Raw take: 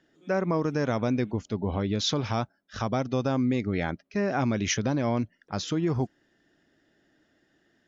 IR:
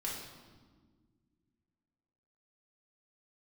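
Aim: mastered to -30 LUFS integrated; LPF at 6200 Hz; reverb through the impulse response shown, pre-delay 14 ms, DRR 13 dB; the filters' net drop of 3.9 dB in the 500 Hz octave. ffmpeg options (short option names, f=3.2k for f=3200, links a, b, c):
-filter_complex "[0:a]lowpass=6.2k,equalizer=f=500:t=o:g=-5,asplit=2[a][b];[1:a]atrim=start_sample=2205,adelay=14[c];[b][c]afir=irnorm=-1:irlink=0,volume=-15dB[d];[a][d]amix=inputs=2:normalize=0,volume=-0.5dB"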